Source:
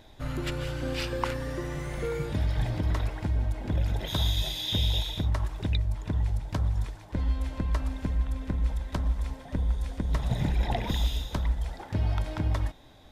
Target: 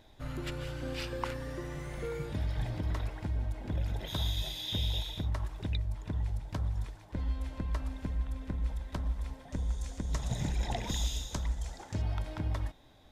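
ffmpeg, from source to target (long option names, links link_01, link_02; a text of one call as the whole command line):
ffmpeg -i in.wav -filter_complex "[0:a]asettb=1/sr,asplit=3[link_01][link_02][link_03];[link_01]atrim=end=9.524[link_04];[link_02]atrim=start=9.52:end=12.02,asetpts=PTS-STARTPTS,afade=type=in:duration=0.004:curve=qsin,afade=type=out:start_time=2.496:duration=0.004:curve=qsin,equalizer=frequency=6800:width_type=o:width=0.84:gain=14.5[link_05];[link_03]atrim=start=12.016[link_06];[link_04][link_05]acrossfade=duration=0.004:curve1=hsin:curve2=qsin[link_07];[link_07][link_06]acrossfade=duration=0.004:curve1=qsin:curve2=hsin,volume=-6dB" out.wav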